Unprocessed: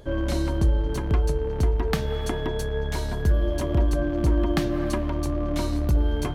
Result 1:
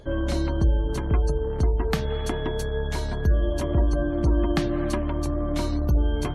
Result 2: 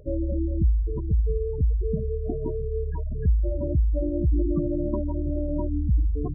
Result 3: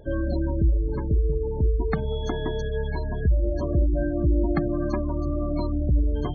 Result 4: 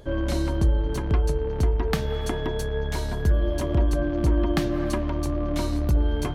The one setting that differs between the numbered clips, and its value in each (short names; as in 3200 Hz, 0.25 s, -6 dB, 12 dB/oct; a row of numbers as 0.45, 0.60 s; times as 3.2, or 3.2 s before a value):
spectral gate, under each frame's peak: -40, -10, -20, -60 dB